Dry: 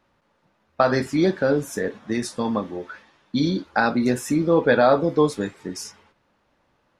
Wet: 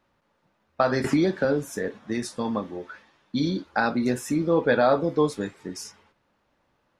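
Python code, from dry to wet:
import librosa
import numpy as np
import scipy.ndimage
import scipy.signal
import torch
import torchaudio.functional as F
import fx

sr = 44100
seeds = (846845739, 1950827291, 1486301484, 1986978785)

y = fx.band_squash(x, sr, depth_pct=100, at=(1.04, 1.45))
y = F.gain(torch.from_numpy(y), -3.5).numpy()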